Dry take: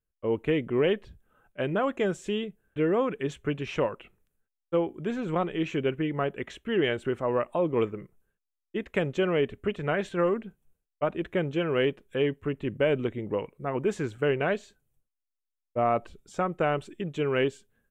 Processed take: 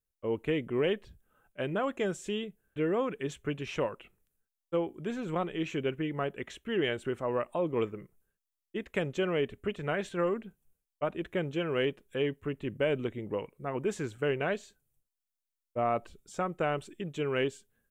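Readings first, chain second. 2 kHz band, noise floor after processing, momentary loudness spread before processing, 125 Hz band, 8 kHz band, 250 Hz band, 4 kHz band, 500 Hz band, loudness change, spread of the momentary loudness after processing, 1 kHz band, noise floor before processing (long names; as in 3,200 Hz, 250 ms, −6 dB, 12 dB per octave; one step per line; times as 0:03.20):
−3.5 dB, below −85 dBFS, 7 LU, −4.5 dB, can't be measured, −4.5 dB, −2.5 dB, −4.5 dB, −4.5 dB, 7 LU, −4.0 dB, −85 dBFS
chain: high-shelf EQ 5,200 Hz +8.5 dB
level −4.5 dB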